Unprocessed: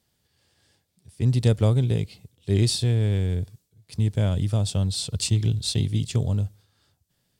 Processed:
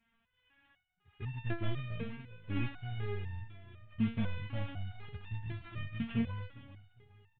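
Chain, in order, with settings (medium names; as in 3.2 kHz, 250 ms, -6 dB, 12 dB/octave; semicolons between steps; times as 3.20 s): CVSD coder 16 kbps; peaking EQ 470 Hz -13.5 dB 1.1 oct; feedback delay 407 ms, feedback 47%, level -15 dB; resonator arpeggio 4 Hz 230–900 Hz; trim +12 dB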